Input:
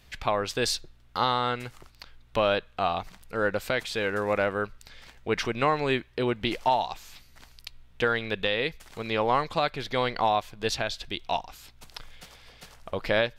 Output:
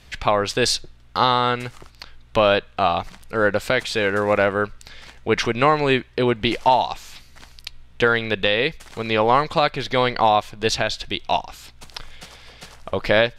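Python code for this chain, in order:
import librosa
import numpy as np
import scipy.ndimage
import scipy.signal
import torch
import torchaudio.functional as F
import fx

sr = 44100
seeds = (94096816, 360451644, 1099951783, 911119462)

y = scipy.signal.sosfilt(scipy.signal.butter(2, 11000.0, 'lowpass', fs=sr, output='sos'), x)
y = F.gain(torch.from_numpy(y), 7.5).numpy()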